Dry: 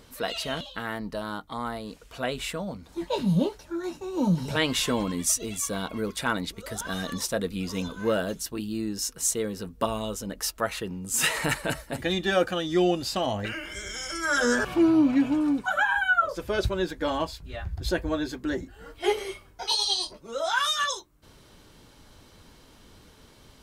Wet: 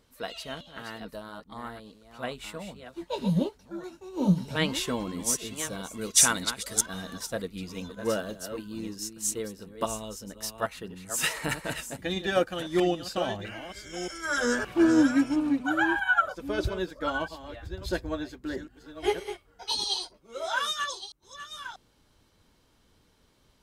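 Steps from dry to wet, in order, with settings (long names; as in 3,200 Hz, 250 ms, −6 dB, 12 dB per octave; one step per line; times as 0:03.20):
delay that plays each chunk backwards 640 ms, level −7.5 dB
0:06.01–0:06.86: parametric band 7,400 Hz +13 dB 2.5 octaves
expander for the loud parts 1.5 to 1, over −41 dBFS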